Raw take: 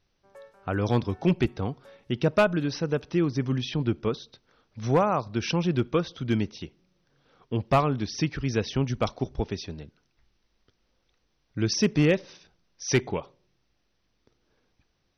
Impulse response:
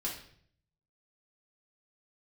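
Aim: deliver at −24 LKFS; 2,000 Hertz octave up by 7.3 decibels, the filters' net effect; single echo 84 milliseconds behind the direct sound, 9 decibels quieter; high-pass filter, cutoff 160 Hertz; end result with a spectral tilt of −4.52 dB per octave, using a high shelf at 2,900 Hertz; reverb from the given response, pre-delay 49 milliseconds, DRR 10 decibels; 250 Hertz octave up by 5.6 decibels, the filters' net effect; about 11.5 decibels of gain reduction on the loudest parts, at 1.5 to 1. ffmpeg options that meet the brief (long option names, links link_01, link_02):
-filter_complex "[0:a]highpass=160,equalizer=frequency=250:width_type=o:gain=8.5,equalizer=frequency=2000:width_type=o:gain=6,highshelf=frequency=2900:gain=8.5,acompressor=threshold=-46dB:ratio=1.5,aecho=1:1:84:0.355,asplit=2[link_01][link_02];[1:a]atrim=start_sample=2205,adelay=49[link_03];[link_02][link_03]afir=irnorm=-1:irlink=0,volume=-12dB[link_04];[link_01][link_04]amix=inputs=2:normalize=0,volume=8.5dB"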